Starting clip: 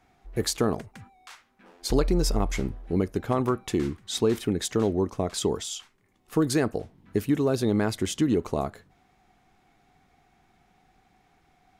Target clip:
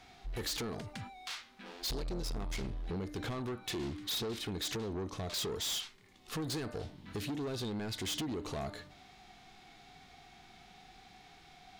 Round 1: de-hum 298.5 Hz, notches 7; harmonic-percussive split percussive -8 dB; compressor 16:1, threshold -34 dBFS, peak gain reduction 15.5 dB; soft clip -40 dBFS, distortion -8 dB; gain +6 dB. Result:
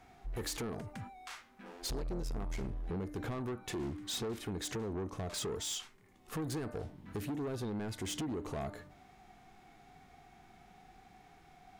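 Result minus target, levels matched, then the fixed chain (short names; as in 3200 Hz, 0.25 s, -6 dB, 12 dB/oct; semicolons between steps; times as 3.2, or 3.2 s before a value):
4000 Hz band -4.0 dB
de-hum 298.5 Hz, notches 7; harmonic-percussive split percussive -8 dB; compressor 16:1, threshold -34 dBFS, peak gain reduction 15.5 dB; bell 4000 Hz +12.5 dB 1.5 oct; soft clip -40 dBFS, distortion -5 dB; gain +6 dB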